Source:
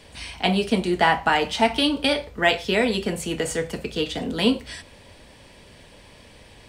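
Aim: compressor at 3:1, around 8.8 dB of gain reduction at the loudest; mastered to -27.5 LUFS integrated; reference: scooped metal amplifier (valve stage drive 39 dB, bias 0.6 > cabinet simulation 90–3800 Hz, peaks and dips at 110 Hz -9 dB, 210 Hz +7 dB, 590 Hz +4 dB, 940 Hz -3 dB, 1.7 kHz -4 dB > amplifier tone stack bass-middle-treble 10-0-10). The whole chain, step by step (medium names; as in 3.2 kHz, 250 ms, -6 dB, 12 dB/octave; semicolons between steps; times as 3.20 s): compression 3:1, threshold -26 dBFS; valve stage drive 39 dB, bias 0.6; cabinet simulation 90–3800 Hz, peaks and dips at 110 Hz -9 dB, 210 Hz +7 dB, 590 Hz +4 dB, 940 Hz -3 dB, 1.7 kHz -4 dB; amplifier tone stack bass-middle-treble 10-0-10; trim +23 dB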